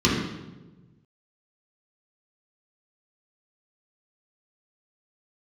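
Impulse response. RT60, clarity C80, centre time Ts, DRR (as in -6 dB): 1.2 s, 4.5 dB, 61 ms, -6.5 dB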